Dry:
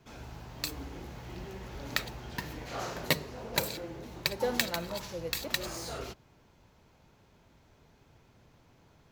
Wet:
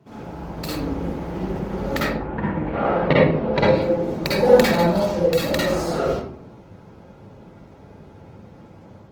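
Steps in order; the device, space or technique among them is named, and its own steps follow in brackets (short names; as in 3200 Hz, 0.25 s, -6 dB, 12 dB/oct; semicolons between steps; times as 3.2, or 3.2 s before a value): 2.06–3.76 LPF 2100 Hz -> 4300 Hz 24 dB/oct; tilt shelf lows +7 dB, about 1200 Hz; notches 60/120/180/240/300/360 Hz; far-field microphone of a smart speaker (reverb RT60 0.65 s, pre-delay 45 ms, DRR -6.5 dB; HPF 110 Hz 12 dB/oct; AGC gain up to 3.5 dB; gain +3 dB; Opus 20 kbps 48000 Hz)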